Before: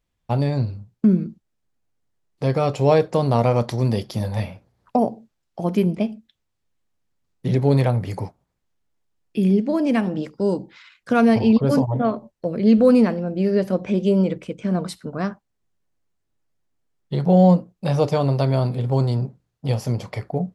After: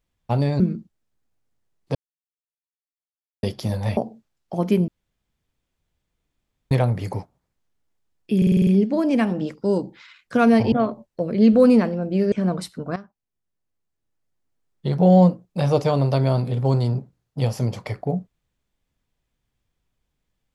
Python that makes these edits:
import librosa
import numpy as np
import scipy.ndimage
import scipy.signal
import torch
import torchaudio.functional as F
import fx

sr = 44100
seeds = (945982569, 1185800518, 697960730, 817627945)

y = fx.edit(x, sr, fx.cut(start_s=0.6, length_s=0.51),
    fx.silence(start_s=2.46, length_s=1.48),
    fx.cut(start_s=4.48, length_s=0.55),
    fx.room_tone_fill(start_s=5.94, length_s=1.83),
    fx.stutter(start_s=9.43, slice_s=0.05, count=7),
    fx.cut(start_s=11.48, length_s=0.49),
    fx.cut(start_s=13.57, length_s=1.02),
    fx.fade_in_from(start_s=15.23, length_s=1.95, floor_db=-15.5), tone=tone)